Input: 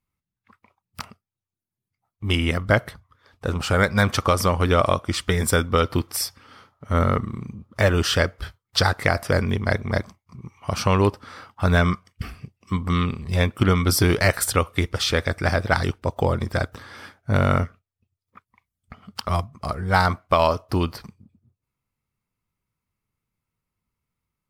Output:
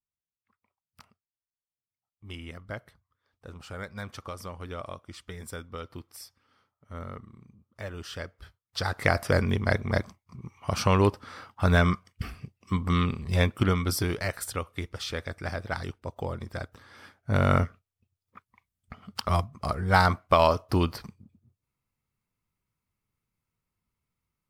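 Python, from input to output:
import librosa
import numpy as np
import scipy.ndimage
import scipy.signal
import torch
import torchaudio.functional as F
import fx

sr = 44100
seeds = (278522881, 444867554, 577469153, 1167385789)

y = fx.gain(x, sr, db=fx.line((7.96, -19.5), (8.78, -12.5), (9.07, -3.0), (13.45, -3.0), (14.24, -12.0), (16.79, -12.0), (17.56, -2.0)))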